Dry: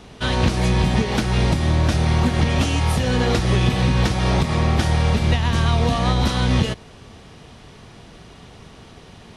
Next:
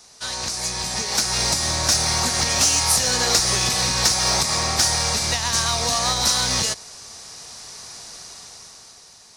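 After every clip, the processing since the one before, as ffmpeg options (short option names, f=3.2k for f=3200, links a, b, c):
-filter_complex "[0:a]acrossover=split=580 5900:gain=0.2 1 0.2[a][b][c];[a][b][c]amix=inputs=3:normalize=0,dynaudnorm=f=180:g=13:m=11dB,aexciter=amount=8.3:drive=9.4:freq=4.8k,volume=-7.5dB"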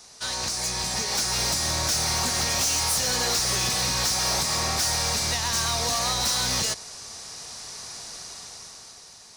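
-af "asoftclip=type=tanh:threshold=-21dB"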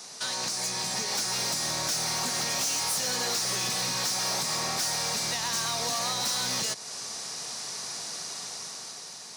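-af "highpass=f=130:w=0.5412,highpass=f=130:w=1.3066,acompressor=threshold=-40dB:ratio=2,volume=5dB"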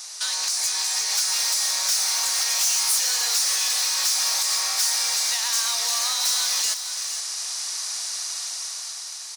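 -af "highpass=1k,highshelf=f=4.2k:g=7.5,aecho=1:1:466:0.299,volume=2dB"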